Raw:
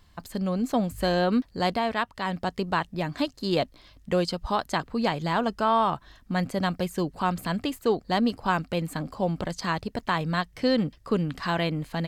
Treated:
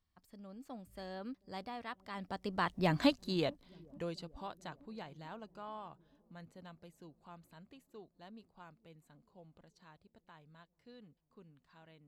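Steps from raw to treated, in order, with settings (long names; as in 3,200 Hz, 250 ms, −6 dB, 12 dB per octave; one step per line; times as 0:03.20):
source passing by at 0:02.97, 18 m/s, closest 2.8 metres
delay with a low-pass on its return 439 ms, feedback 71%, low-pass 420 Hz, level −23.5 dB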